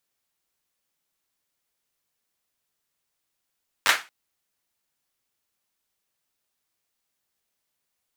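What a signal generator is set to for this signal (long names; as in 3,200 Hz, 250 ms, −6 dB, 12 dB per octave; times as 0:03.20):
synth clap length 0.23 s, apart 10 ms, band 1,700 Hz, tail 0.27 s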